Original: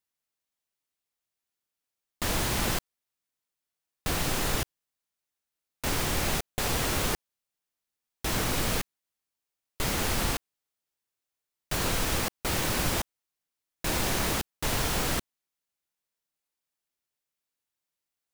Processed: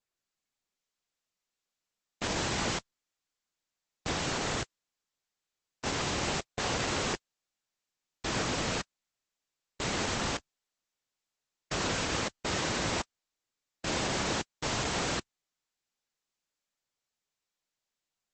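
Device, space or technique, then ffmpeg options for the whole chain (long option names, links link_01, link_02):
video call: -filter_complex "[0:a]lowpass=8800,asettb=1/sr,asplit=3[link_01][link_02][link_03];[link_01]atrim=end=10.314[link_04];[link_02]atrim=start=10.31:end=12.24,asetpts=PTS-STARTPTS,afade=type=in:duration=0.004:curve=qsin,afade=type=out:start_time=1.926:duration=0.004:curve=qsin,asplit=2[link_05][link_06];[link_06]adelay=19,volume=-12dB[link_07];[link_05][link_07]amix=inputs=2:normalize=0,atrim=end_sample=85113[link_08];[link_03]atrim=start=12.236[link_09];[link_04][link_08]acrossfade=duration=0.004:curve1=hsin:curve2=qsin[link_10];[link_10][link_09]acrossfade=duration=0.004:curve1=qsin:curve2=hsin,highpass=frequency=140:poles=1,dynaudnorm=framelen=300:gausssize=5:maxgain=4.5dB,volume=-5dB" -ar 48000 -c:a libopus -b:a 12k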